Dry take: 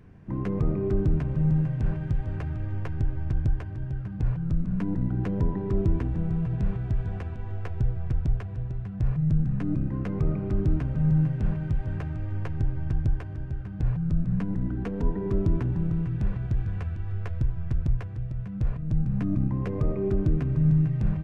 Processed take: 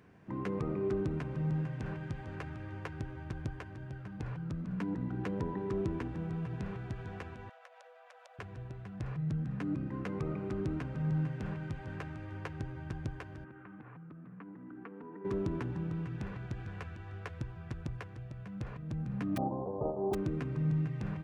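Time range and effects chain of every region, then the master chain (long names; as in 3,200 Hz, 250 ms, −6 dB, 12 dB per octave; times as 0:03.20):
0:07.49–0:08.39: Chebyshev high-pass filter 490 Hz, order 10 + downward compressor, threshold −51 dBFS
0:13.44–0:15.25: loudspeaker in its box 190–2,500 Hz, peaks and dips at 290 Hz +5 dB, 600 Hz −9 dB, 1,200 Hz +6 dB + downward compressor, threshold −39 dBFS
0:19.36–0:20.13: spectral envelope flattened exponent 0.3 + Butterworth low-pass 830 Hz 48 dB per octave
whole clip: high-pass filter 460 Hz 6 dB per octave; dynamic equaliser 650 Hz, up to −5 dB, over −59 dBFS, Q 4.4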